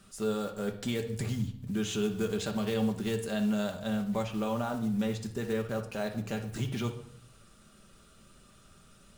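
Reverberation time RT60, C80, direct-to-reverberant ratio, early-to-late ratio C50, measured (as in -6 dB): 0.65 s, 13.5 dB, 3.0 dB, 9.5 dB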